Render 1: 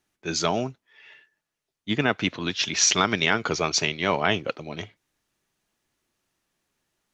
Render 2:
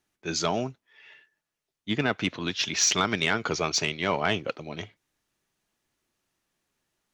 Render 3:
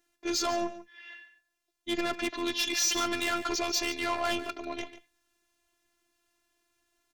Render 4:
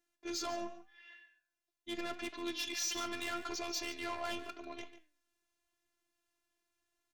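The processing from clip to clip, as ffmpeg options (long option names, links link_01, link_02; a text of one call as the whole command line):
ffmpeg -i in.wav -af "acontrast=83,volume=-9dB" out.wav
ffmpeg -i in.wav -af "asoftclip=type=tanh:threshold=-28dB,afftfilt=real='hypot(re,im)*cos(PI*b)':imag='0':win_size=512:overlap=0.75,aecho=1:1:144:0.2,volume=6.5dB" out.wav
ffmpeg -i in.wav -af "flanger=delay=8.6:depth=5.3:regen=84:speed=0.81:shape=triangular,volume=-5dB" out.wav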